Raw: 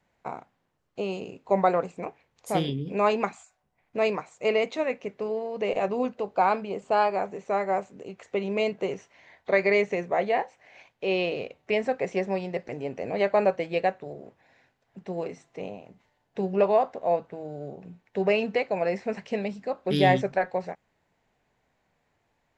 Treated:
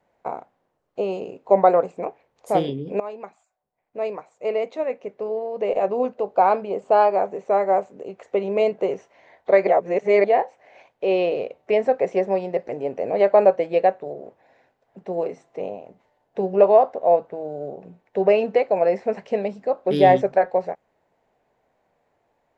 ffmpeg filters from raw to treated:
-filter_complex "[0:a]asplit=4[a][b][c][d];[a]atrim=end=3,asetpts=PTS-STARTPTS,afade=t=out:st=2.996:d=0.004:c=hsin:silence=0.11885[e];[b]atrim=start=3:end=9.672,asetpts=PTS-STARTPTS,afade=t=in:d=3.75:silence=0.11885[f];[c]atrim=start=9.668:end=10.242,asetpts=PTS-STARTPTS,areverse[g];[d]atrim=start=10.238[h];[e][f]concat=n=2:v=0:a=1[i];[i][g]acrossfade=d=0.004:c1=hsin:c2=hsin[j];[j][h]acrossfade=d=0.004:c1=hsin:c2=hsin,equalizer=f=570:w=0.61:g=12.5,volume=-4dB"

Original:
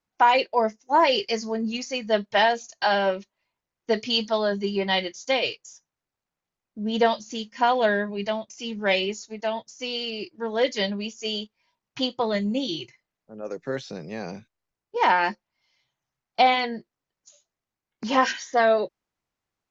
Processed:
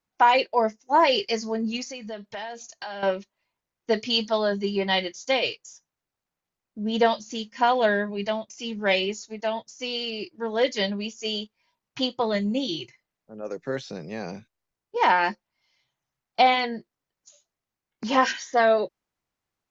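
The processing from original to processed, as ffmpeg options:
-filter_complex "[0:a]asettb=1/sr,asplit=3[a][b][c];[a]atrim=end=1.834[d];[b]atrim=start=1.83:end=3.03,asetpts=PTS-STARTPTS,afade=t=in:d=0.004:c=qsin,afade=t=out:st=1.196:d=0.004:c=qsin,acompressor=threshold=-34dB:ratio=4:attack=3.2:release=140:knee=1:detection=peak[e];[c]atrim=start=3.026[f];[d][e]acrossfade=d=0.004:c1=hsin:c2=qsin[g];[g][f]acrossfade=d=0.004:c1=qsin:c2=hsin"

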